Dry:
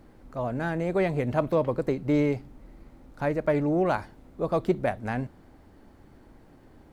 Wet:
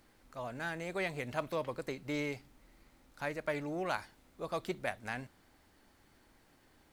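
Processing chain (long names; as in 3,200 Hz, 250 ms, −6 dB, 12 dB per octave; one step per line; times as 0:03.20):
tilt shelving filter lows −9 dB, about 1,200 Hz
level −6.5 dB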